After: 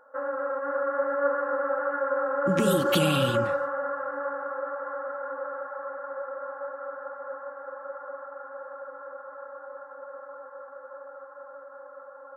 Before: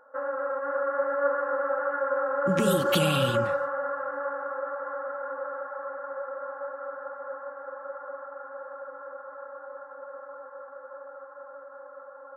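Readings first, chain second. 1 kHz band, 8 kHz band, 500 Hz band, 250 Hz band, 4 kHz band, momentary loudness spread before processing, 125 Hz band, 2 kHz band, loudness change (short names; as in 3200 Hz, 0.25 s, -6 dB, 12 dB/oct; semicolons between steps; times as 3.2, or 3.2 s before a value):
0.0 dB, 0.0 dB, +0.5 dB, +2.0 dB, 0.0 dB, 20 LU, 0.0 dB, 0.0 dB, +0.5 dB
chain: dynamic EQ 300 Hz, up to +5 dB, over -48 dBFS, Q 3.5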